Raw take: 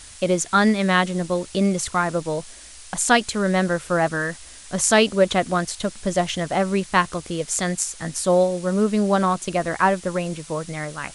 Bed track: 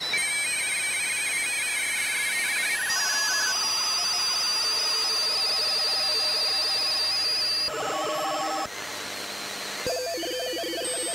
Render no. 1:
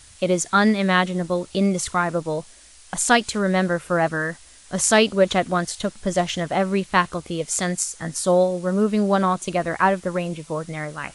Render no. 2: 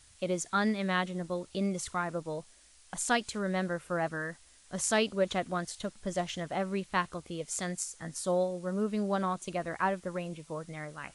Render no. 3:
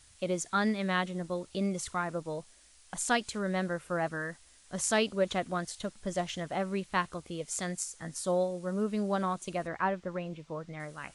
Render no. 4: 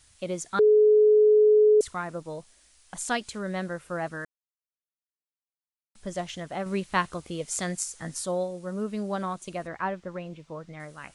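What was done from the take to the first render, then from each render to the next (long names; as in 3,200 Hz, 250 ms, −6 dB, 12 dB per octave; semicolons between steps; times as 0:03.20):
noise reduction from a noise print 6 dB
level −11.5 dB
0:09.67–0:10.80: high-frequency loss of the air 110 metres
0:00.59–0:01.81: beep over 425 Hz −14.5 dBFS; 0:04.25–0:05.95: silence; 0:06.66–0:08.26: clip gain +4.5 dB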